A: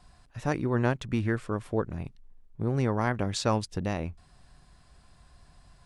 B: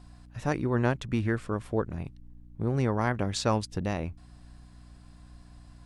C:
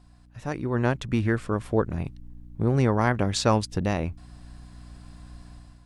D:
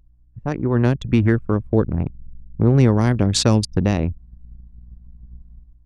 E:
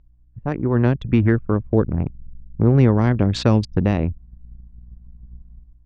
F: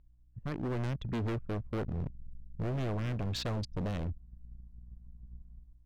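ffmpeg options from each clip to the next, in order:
-af "aeval=exprs='val(0)+0.00316*(sin(2*PI*60*n/s)+sin(2*PI*2*60*n/s)/2+sin(2*PI*3*60*n/s)/3+sin(2*PI*4*60*n/s)/4+sin(2*PI*5*60*n/s)/5)':c=same"
-af "dynaudnorm=f=500:g=3:m=3.35,volume=0.631"
-filter_complex "[0:a]anlmdn=25.1,acrossover=split=410|3000[s0][s1][s2];[s1]acompressor=threshold=0.02:ratio=6[s3];[s0][s3][s2]amix=inputs=3:normalize=0,volume=2.66"
-af "lowpass=3000"
-af "volume=14.1,asoftclip=hard,volume=0.0708,volume=0.376"

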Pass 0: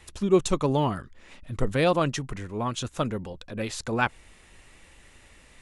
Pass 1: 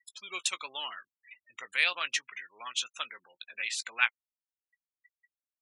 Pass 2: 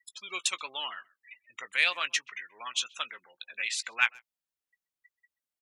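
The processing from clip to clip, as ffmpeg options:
-filter_complex "[0:a]afftfilt=real='re*gte(hypot(re,im),0.01)':imag='im*gte(hypot(re,im),0.01)':win_size=1024:overlap=0.75,highpass=f=2200:t=q:w=2.2,asplit=2[s0][s1];[s1]adelay=17,volume=0.2[s2];[s0][s2]amix=inputs=2:normalize=0"
-filter_complex "[0:a]asplit=2[s0][s1];[s1]asoftclip=type=tanh:threshold=0.133,volume=0.398[s2];[s0][s2]amix=inputs=2:normalize=0,asplit=2[s3][s4];[s4]adelay=130,highpass=300,lowpass=3400,asoftclip=type=hard:threshold=0.15,volume=0.0562[s5];[s3][s5]amix=inputs=2:normalize=0,volume=0.891"

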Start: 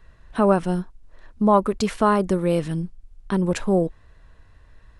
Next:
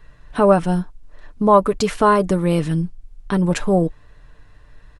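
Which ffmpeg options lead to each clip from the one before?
-af "aecho=1:1:6.8:0.42,volume=1.5"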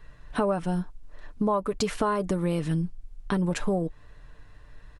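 -af "acompressor=threshold=0.1:ratio=6,volume=0.75"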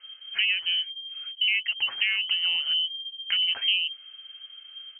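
-af "lowpass=f=2700:t=q:w=0.5098,lowpass=f=2700:t=q:w=0.6013,lowpass=f=2700:t=q:w=0.9,lowpass=f=2700:t=q:w=2.563,afreqshift=-3200,highshelf=f=2100:g=10.5,volume=0.473"

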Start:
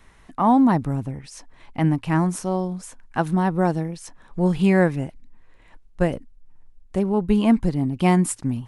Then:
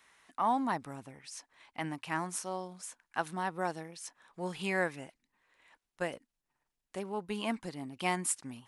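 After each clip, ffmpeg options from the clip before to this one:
-af "highpass=f=1400:p=1,volume=0.631"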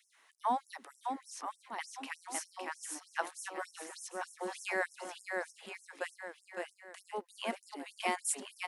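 -af "aecho=1:1:560|1036|1441|1785|2077:0.631|0.398|0.251|0.158|0.1,afftfilt=real='re*gte(b*sr/1024,210*pow(5400/210,0.5+0.5*sin(2*PI*3.3*pts/sr)))':imag='im*gte(b*sr/1024,210*pow(5400/210,0.5+0.5*sin(2*PI*3.3*pts/sr)))':win_size=1024:overlap=0.75,volume=0.841"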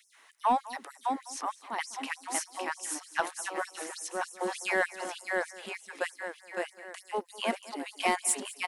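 -af "asoftclip=type=tanh:threshold=0.0841,aecho=1:1:202:0.119,volume=2.24"

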